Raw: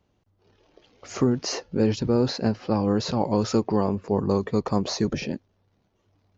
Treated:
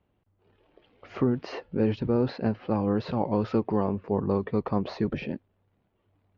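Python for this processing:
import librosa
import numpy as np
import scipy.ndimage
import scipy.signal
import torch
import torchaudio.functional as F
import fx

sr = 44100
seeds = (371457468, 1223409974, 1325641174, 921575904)

y = scipy.signal.sosfilt(scipy.signal.butter(4, 3200.0, 'lowpass', fs=sr, output='sos'), x)
y = y * 10.0 ** (-3.0 / 20.0)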